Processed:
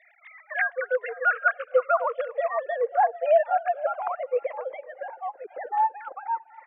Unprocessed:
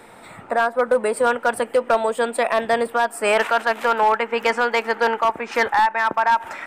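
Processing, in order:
three sine waves on the formant tracks
band-pass filter sweep 1,900 Hz → 320 Hz, 0:00.89–0:04.79
echo through a band-pass that steps 255 ms, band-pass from 340 Hz, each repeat 1.4 octaves, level −10.5 dB
phaser whose notches keep moving one way falling 0.46 Hz
level +7.5 dB

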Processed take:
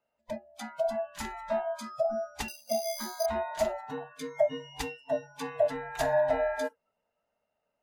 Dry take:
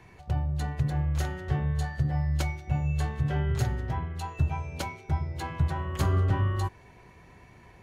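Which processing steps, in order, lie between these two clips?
neighbouring bands swapped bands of 500 Hz
0:02.48–0:03.26: bad sample-rate conversion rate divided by 8×, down filtered, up hold
noise reduction from a noise print of the clip's start 29 dB

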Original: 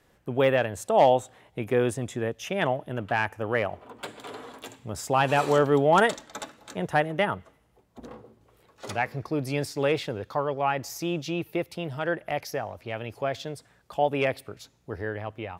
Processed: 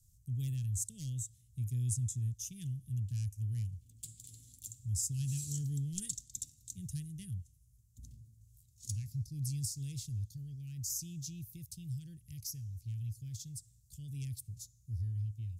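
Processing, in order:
Chebyshev band-stop filter 110–6,600 Hz, order 3
treble cut that deepens with the level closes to 2,200 Hz, closed at −19 dBFS
level +4.5 dB

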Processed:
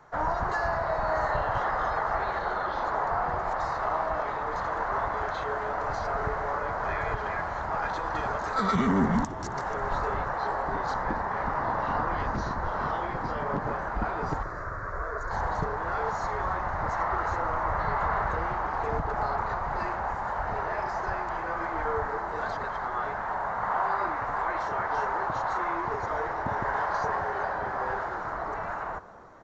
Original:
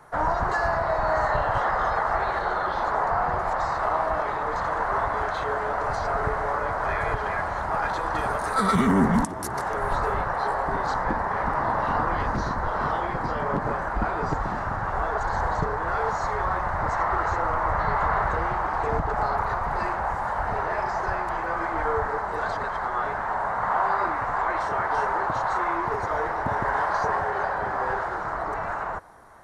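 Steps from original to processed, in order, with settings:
0:14.43–0:15.31: phaser with its sweep stopped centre 820 Hz, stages 6
echo with shifted repeats 273 ms, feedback 64%, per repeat −110 Hz, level −19 dB
downsampling to 16,000 Hz
level −4 dB

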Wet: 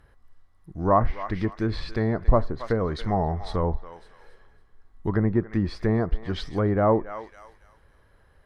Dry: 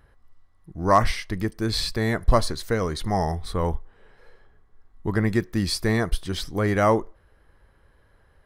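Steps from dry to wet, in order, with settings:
feedback echo with a high-pass in the loop 278 ms, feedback 31%, high-pass 730 Hz, level −13 dB
treble cut that deepens with the level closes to 1,000 Hz, closed at −19 dBFS

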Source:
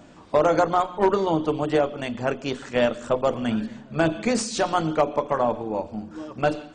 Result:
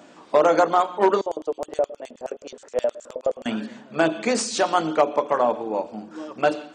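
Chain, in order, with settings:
high-pass filter 280 Hz 12 dB per octave
0:01.21–0:03.46: auto-filter band-pass square 9.5 Hz 540–7,100 Hz
level +2.5 dB

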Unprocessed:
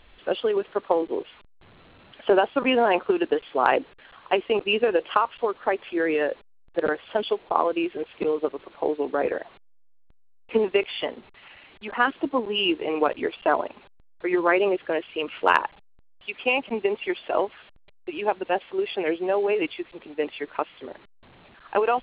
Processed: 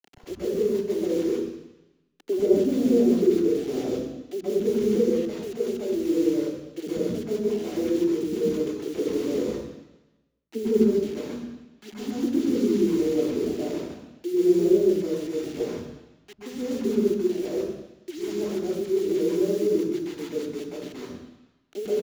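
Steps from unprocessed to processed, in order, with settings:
inverse Chebyshev low-pass filter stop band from 960 Hz, stop band 50 dB
bit-depth reduction 8 bits, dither none
multiband delay without the direct sound highs, lows 100 ms, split 270 Hz
convolution reverb RT60 1.1 s, pre-delay 122 ms, DRR −5.5 dB

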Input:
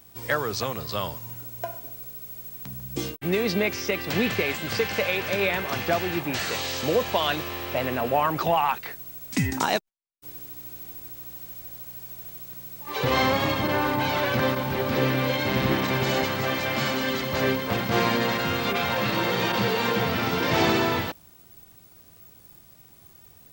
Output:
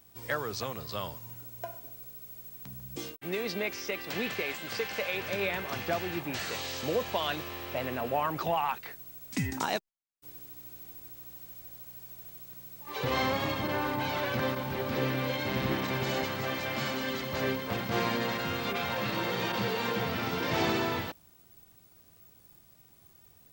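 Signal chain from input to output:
0:02.96–0:05.14: low-shelf EQ 180 Hz −11.5 dB
level −7 dB

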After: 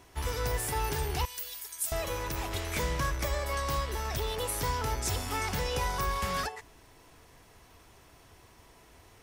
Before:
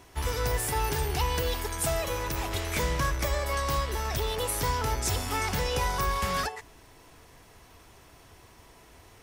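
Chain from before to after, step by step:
0:01.25–0:01.92: first-order pre-emphasis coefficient 0.97
level −3 dB

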